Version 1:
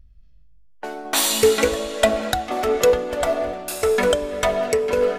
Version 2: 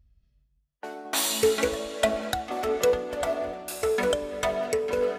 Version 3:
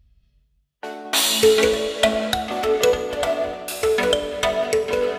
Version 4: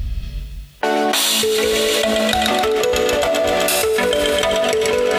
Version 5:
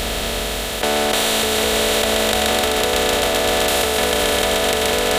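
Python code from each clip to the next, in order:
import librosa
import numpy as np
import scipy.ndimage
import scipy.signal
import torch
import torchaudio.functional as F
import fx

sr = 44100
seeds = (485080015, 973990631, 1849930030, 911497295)

y1 = scipy.signal.sosfilt(scipy.signal.butter(2, 46.0, 'highpass', fs=sr, output='sos'), x)
y1 = y1 * librosa.db_to_amplitude(-6.5)
y2 = fx.peak_eq(y1, sr, hz=3200.0, db=6.5, octaves=1.1)
y2 = fx.rev_fdn(y2, sr, rt60_s=1.9, lf_ratio=0.95, hf_ratio=0.55, size_ms=14.0, drr_db=9.5)
y2 = y2 * librosa.db_to_amplitude(4.5)
y3 = fx.echo_wet_highpass(y2, sr, ms=128, feedback_pct=73, hz=1600.0, wet_db=-7)
y3 = fx.env_flatten(y3, sr, amount_pct=100)
y3 = y3 * librosa.db_to_amplitude(-6.0)
y4 = fx.bin_compress(y3, sr, power=0.2)
y4 = y4 * librosa.db_to_amplitude(-8.5)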